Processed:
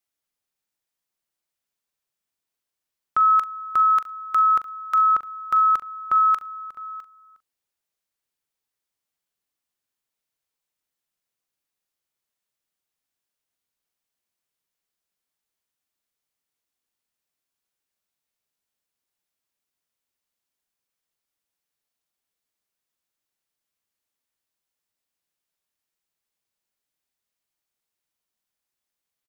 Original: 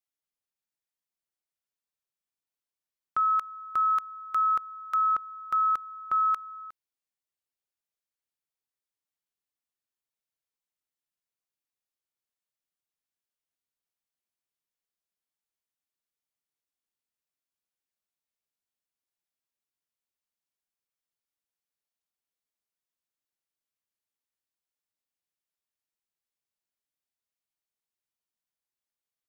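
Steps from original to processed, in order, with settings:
double-tracking delay 41 ms −13 dB
on a send: single-tap delay 657 ms −18.5 dB
on the sum: level +6.5 dB

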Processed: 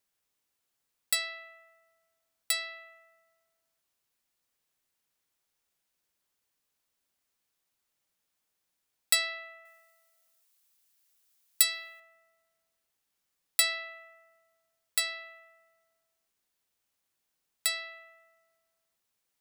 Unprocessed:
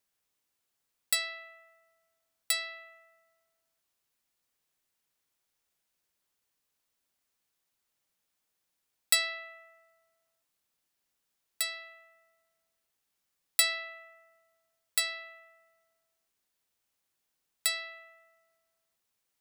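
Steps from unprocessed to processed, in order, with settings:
0:09.65–0:12.00: spectral tilt +3 dB per octave

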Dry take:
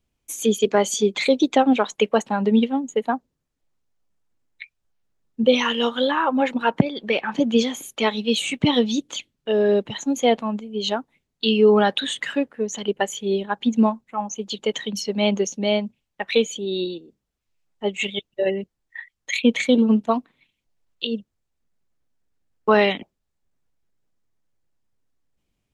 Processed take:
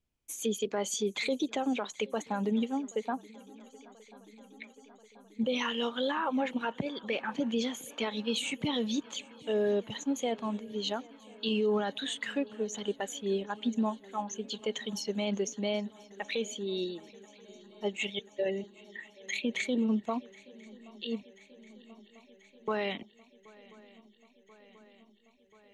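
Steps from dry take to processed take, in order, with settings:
brickwall limiter −13.5 dBFS, peak gain reduction 10 dB
feedback echo with a long and a short gap by turns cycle 1,035 ms, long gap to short 3 to 1, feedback 71%, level −24 dB
level −8.5 dB

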